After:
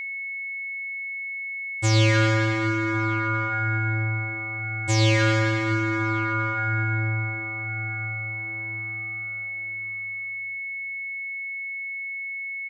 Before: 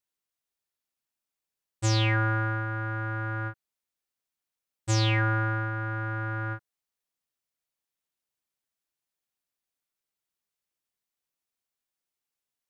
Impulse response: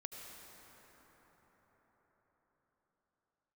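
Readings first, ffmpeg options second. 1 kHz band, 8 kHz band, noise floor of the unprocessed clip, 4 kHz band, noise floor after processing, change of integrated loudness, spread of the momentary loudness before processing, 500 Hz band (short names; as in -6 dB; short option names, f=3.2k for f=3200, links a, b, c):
+5.5 dB, +5.0 dB, under -85 dBFS, +5.0 dB, -33 dBFS, +3.0 dB, 11 LU, +9.0 dB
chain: -filter_complex "[0:a]asplit=2[a][b];[b]adelay=1108,volume=-12dB,highshelf=f=4k:g=-24.9[c];[a][c]amix=inputs=2:normalize=0[d];[1:a]atrim=start_sample=2205,asetrate=38808,aresample=44100[e];[d][e]afir=irnorm=-1:irlink=0,aeval=exprs='val(0)+0.0126*sin(2*PI*2200*n/s)':c=same,volume=8.5dB"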